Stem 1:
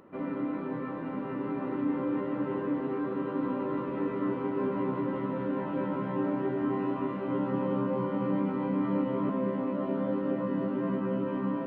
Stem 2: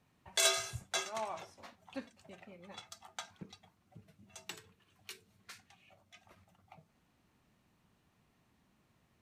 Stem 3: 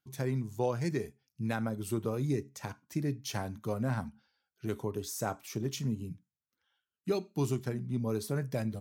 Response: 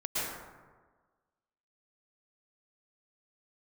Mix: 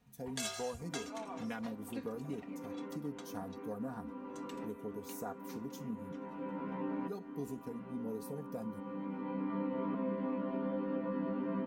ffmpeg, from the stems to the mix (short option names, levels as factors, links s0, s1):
-filter_complex "[0:a]adelay=650,volume=0.75[s0];[1:a]acompressor=threshold=0.00562:ratio=2,volume=0.794,afade=t=out:st=2.48:d=0.32:silence=0.446684[s1];[2:a]afwtdn=0.0141,aemphasis=mode=production:type=50fm,volume=0.473,asplit=2[s2][s3];[s3]apad=whole_len=543311[s4];[s0][s4]sidechaincompress=threshold=0.00355:ratio=8:attack=5.7:release=1060[s5];[s5][s2]amix=inputs=2:normalize=0,lowshelf=f=320:g=-7,acompressor=threshold=0.0112:ratio=2.5,volume=1[s6];[s1][s6]amix=inputs=2:normalize=0,lowshelf=f=190:g=5,aecho=1:1:4.2:0.7"